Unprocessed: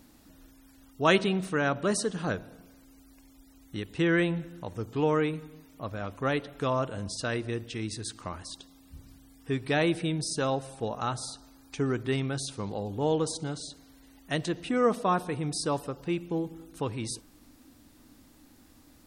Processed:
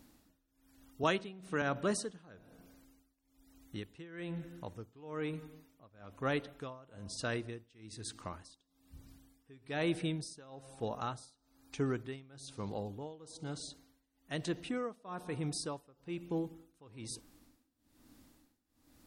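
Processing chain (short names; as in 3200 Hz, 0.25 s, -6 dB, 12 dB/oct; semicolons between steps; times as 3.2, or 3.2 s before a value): tremolo 1.1 Hz, depth 93%; 1.03–1.62 three-band squash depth 70%; gain -5 dB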